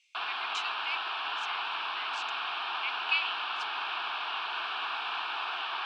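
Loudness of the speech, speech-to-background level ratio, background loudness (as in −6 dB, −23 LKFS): −37.0 LKFS, −4.0 dB, −33.0 LKFS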